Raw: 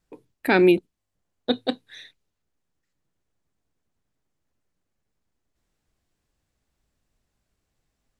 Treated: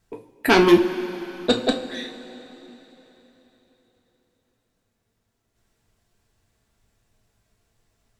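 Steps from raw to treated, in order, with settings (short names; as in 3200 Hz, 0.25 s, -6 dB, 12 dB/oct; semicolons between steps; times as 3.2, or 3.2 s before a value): sine folder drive 8 dB, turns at -4 dBFS; two-slope reverb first 0.29 s, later 3.8 s, from -18 dB, DRR 1.5 dB; gain -6 dB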